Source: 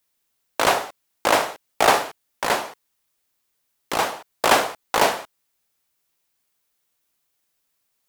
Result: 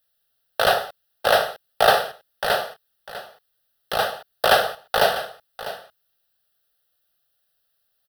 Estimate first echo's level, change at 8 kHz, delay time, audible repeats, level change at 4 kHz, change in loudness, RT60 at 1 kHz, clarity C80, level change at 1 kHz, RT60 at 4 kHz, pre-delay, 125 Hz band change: -14.0 dB, -6.5 dB, 0.649 s, 1, +2.0 dB, 0.0 dB, none, none, -1.0 dB, none, none, +0.5 dB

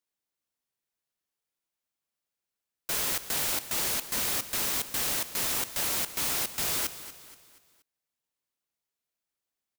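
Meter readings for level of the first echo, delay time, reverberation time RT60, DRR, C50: -14.0 dB, 0.238 s, none, none, none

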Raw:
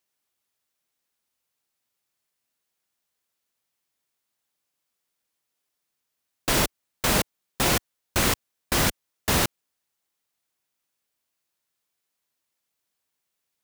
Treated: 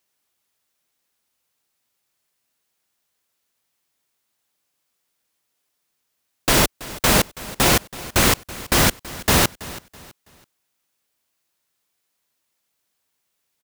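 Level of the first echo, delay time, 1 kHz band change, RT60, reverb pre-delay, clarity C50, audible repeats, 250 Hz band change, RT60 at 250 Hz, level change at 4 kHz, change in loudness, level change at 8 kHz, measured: -18.0 dB, 0.328 s, +6.0 dB, none, none, none, 2, +6.0 dB, none, +6.0 dB, +6.0 dB, +6.0 dB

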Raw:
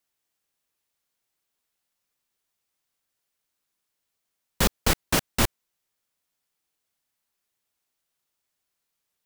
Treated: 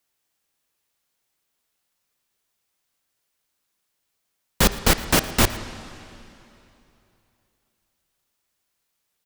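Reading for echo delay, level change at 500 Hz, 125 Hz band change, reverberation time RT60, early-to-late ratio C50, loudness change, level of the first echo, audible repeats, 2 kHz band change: 0.113 s, +5.0 dB, +4.5 dB, 3.0 s, 12.0 dB, +4.5 dB, -20.5 dB, 1, +5.0 dB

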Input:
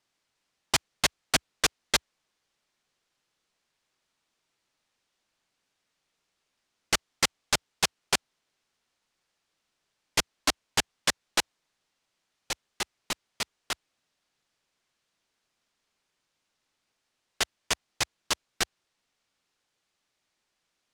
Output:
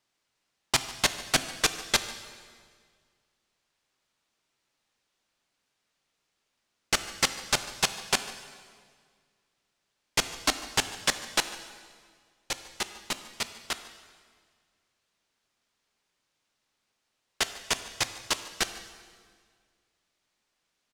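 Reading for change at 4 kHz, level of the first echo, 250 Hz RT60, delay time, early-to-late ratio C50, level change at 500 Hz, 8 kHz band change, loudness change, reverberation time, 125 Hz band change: +0.5 dB, -19.5 dB, 2.1 s, 0.147 s, 11.0 dB, +0.5 dB, +0.5 dB, +0.5 dB, 1.9 s, +0.5 dB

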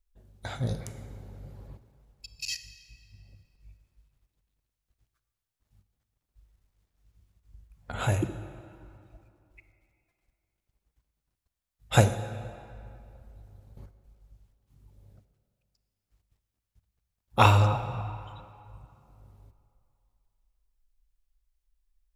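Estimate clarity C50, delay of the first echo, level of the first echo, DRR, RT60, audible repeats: 11.5 dB, none, none, 11.0 dB, 2.6 s, none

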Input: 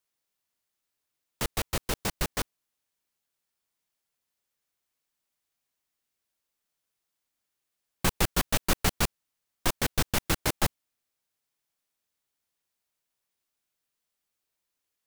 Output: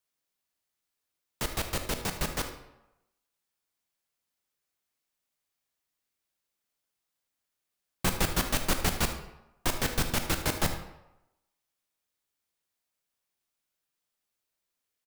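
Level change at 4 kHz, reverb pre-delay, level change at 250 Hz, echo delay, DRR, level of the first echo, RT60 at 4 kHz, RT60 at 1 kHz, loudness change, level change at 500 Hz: -1.0 dB, 18 ms, -0.5 dB, 76 ms, 5.5 dB, -14.0 dB, 0.60 s, 0.95 s, -1.0 dB, -1.0 dB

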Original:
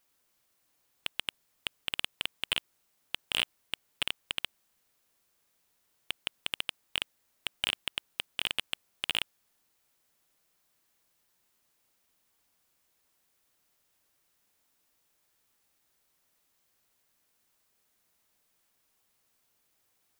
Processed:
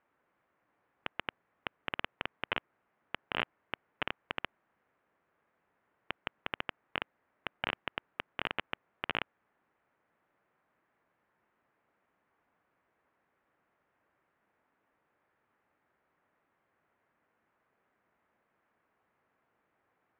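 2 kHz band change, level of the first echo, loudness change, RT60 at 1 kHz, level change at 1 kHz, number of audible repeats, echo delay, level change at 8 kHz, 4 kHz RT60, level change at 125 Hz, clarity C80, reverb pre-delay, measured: -1.0 dB, none, -5.0 dB, none, +6.5 dB, none, none, under -30 dB, none, +2.5 dB, none, none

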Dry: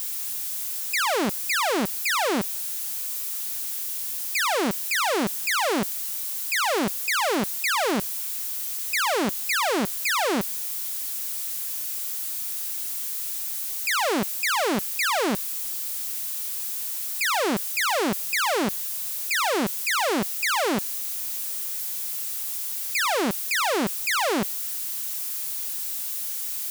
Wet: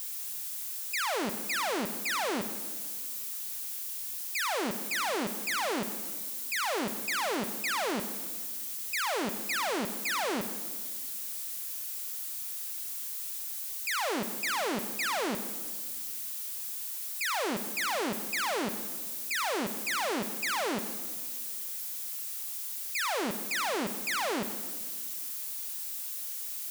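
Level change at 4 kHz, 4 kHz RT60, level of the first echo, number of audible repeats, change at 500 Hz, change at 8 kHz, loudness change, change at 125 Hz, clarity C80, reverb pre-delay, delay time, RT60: -7.0 dB, 1.4 s, none, none, -7.5 dB, -7.0 dB, -7.0 dB, -8.5 dB, 11.5 dB, 37 ms, none, 1.7 s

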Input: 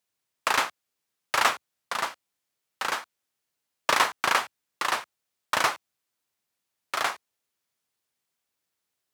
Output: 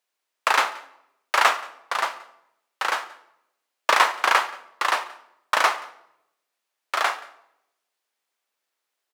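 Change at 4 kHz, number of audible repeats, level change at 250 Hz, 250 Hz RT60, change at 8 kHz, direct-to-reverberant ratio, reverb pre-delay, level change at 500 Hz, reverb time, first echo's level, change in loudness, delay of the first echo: +2.5 dB, 1, -2.5 dB, 0.90 s, 0.0 dB, 11.5 dB, 13 ms, +4.0 dB, 0.80 s, -23.0 dB, +4.0 dB, 0.178 s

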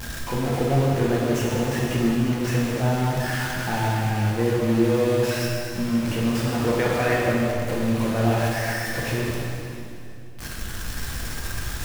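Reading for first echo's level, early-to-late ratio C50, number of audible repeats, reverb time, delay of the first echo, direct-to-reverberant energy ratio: none, -1.5 dB, none, 2.8 s, none, -5.0 dB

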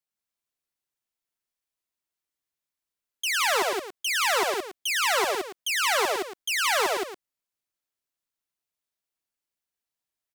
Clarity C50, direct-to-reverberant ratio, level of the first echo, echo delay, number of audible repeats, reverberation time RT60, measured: none, none, -5.0 dB, 0.107 s, 3, none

